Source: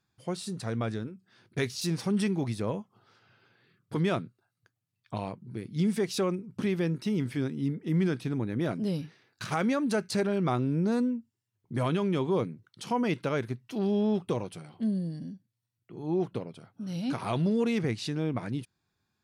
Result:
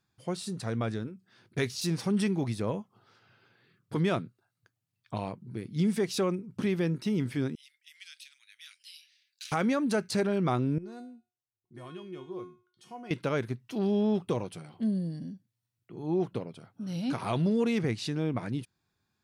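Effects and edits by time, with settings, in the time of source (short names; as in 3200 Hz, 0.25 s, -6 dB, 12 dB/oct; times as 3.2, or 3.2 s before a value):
7.55–9.52 inverse Chebyshev high-pass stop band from 570 Hz, stop band 70 dB
10.78–13.11 resonator 360 Hz, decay 0.41 s, mix 90%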